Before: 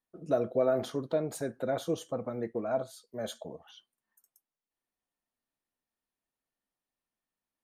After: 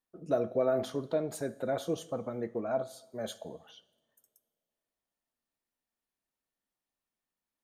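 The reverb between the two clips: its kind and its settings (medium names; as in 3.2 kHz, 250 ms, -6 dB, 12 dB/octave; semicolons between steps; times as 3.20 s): two-slope reverb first 0.9 s, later 3 s, from -20 dB, DRR 16 dB; trim -1 dB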